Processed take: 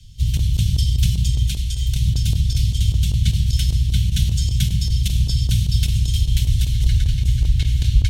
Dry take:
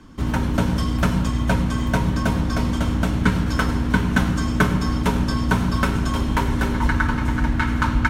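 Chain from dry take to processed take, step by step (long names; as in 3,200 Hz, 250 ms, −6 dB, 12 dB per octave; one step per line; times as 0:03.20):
elliptic band-stop filter 120–3,300 Hz, stop band 50 dB
square-wave tremolo 5.1 Hz, depth 60%, duty 90%
0:01.47–0:02.05: parametric band 84 Hz → 420 Hz −13 dB 1.4 octaves
level +7.5 dB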